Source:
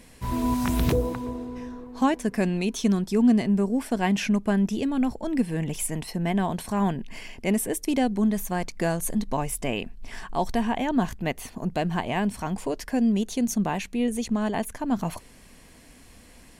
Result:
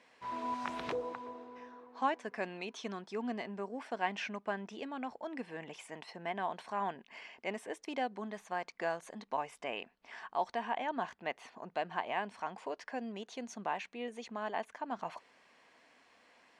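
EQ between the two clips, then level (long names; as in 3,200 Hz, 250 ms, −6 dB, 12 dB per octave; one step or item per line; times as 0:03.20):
resonant band-pass 860 Hz, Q 0.79
high-frequency loss of the air 100 metres
spectral tilt +3.5 dB per octave
−4.5 dB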